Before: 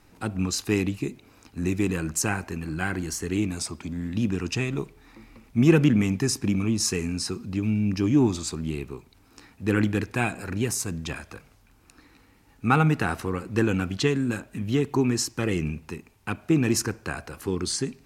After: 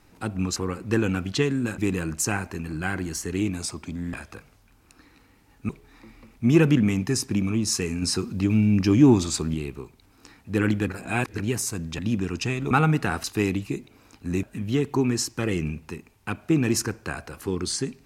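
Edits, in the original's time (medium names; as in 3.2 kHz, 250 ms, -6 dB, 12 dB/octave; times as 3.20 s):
0.56–1.75 s: swap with 13.21–14.43 s
4.10–4.82 s: swap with 11.12–12.68 s
7.15–8.67 s: gain +4.5 dB
10.01–10.52 s: reverse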